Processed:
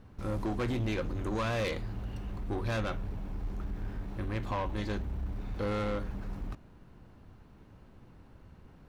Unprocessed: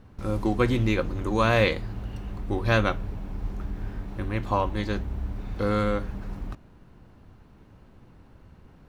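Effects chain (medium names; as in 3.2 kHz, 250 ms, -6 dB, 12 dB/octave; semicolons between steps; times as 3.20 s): in parallel at +0.5 dB: peak limiter -17 dBFS, peak gain reduction 9.5 dB; on the sum: saturation -18.5 dBFS, distortion -10 dB; trim -9 dB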